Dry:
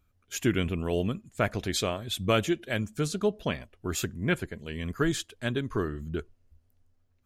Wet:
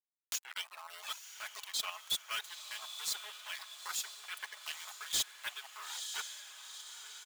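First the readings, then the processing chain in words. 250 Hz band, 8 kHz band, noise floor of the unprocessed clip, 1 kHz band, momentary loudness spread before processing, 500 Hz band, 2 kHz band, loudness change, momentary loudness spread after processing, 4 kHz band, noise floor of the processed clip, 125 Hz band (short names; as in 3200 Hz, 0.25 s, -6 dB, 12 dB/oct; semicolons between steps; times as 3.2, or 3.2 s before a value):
under -35 dB, -0.5 dB, -69 dBFS, -10.0 dB, 9 LU, -30.5 dB, -8.5 dB, -9.0 dB, 10 LU, -1.0 dB, -70 dBFS, under -40 dB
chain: reverse; compressor 12:1, threshold -37 dBFS, peak gain reduction 18.5 dB; reverse; resonant high shelf 2800 Hz +6 dB, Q 1.5; comb 4.7 ms, depth 67%; sample gate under -38 dBFS; upward compressor, threshold -39 dBFS; HPF 1000 Hz 24 dB/oct; reverb removal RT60 1.8 s; chopper 3.9 Hz, depth 60%, duty 40%; diffused feedback echo 0.92 s, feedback 53%, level -12 dB; soft clip -36.5 dBFS, distortion -7 dB; mismatched tape noise reduction encoder only; gain +8.5 dB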